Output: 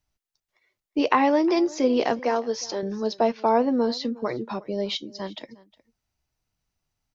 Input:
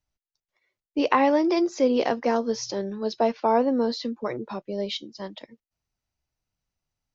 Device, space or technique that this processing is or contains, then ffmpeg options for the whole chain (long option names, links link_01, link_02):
parallel compression: -filter_complex "[0:a]bandreject=frequency=540:width=15,asettb=1/sr,asplit=3[link_01][link_02][link_03];[link_01]atrim=end=2.194[link_04];[link_02]atrim=start=2.19:end=2.83,asetpts=PTS-STARTPTS,afade=type=in:duration=0.004:curve=qsin,afade=type=out:start_time=0.636:duration=0.004:curve=qsin,bass=frequency=250:gain=-13,treble=frequency=4000:gain=-2[link_05];[link_03]atrim=start=2.826[link_06];[link_04][link_05]acrossfade=duration=0.004:curve1=hsin:curve2=qsin[link_07];[link_07][link_06]acrossfade=duration=0.004:curve1=qsin:curve2=hsin,asplit=2[link_08][link_09];[link_09]acompressor=threshold=-35dB:ratio=6,volume=-4dB[link_10];[link_08][link_10]amix=inputs=2:normalize=0,aecho=1:1:360:0.0794"